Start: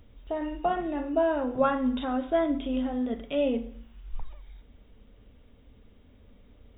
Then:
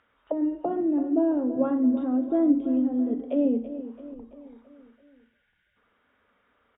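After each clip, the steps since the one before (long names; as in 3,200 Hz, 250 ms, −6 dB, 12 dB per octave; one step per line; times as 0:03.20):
gain on a spectral selection 0:04.95–0:05.77, 200–1,400 Hz −26 dB
envelope filter 310–1,600 Hz, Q 3, down, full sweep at −28 dBFS
repeating echo 334 ms, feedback 53%, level −13 dB
level +9 dB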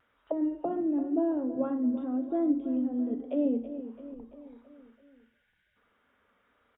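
speech leveller within 3 dB 2 s
pitch vibrato 0.93 Hz 31 cents
level −5 dB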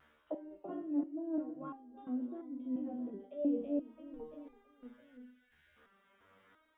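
reversed playback
downward compressor 5 to 1, threshold −39 dBFS, peak gain reduction 16 dB
reversed playback
step-sequenced resonator 2.9 Hz 76–400 Hz
level +13 dB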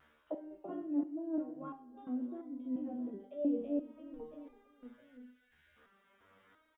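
repeating echo 65 ms, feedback 51%, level −18.5 dB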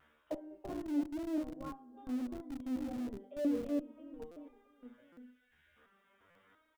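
in parallel at −7 dB: comparator with hysteresis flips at −39.5 dBFS
on the sum: buffer that repeats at 0:04.31/0:05.12/0:06.30, samples 256, times 8
level −1 dB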